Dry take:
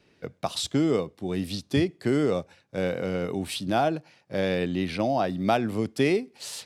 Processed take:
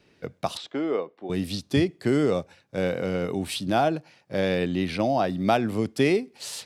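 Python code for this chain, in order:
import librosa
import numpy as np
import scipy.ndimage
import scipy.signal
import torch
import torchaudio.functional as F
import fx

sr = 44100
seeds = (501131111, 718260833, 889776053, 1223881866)

y = fx.bandpass_edges(x, sr, low_hz=410.0, high_hz=2200.0, at=(0.57, 1.3))
y = F.gain(torch.from_numpy(y), 1.5).numpy()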